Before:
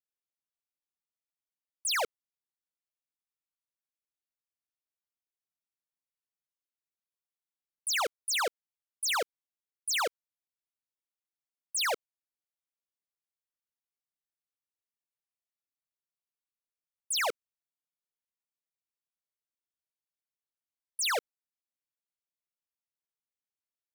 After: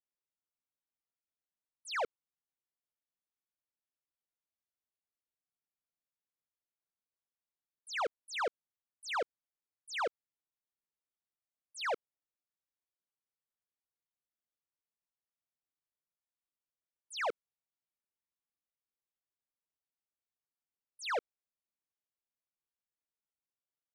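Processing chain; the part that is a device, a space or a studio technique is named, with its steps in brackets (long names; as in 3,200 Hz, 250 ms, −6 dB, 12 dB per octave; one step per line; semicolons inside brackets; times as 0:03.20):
through cloth (low-pass filter 7,900 Hz 12 dB per octave; high-shelf EQ 3,100 Hz −17 dB)
level −1.5 dB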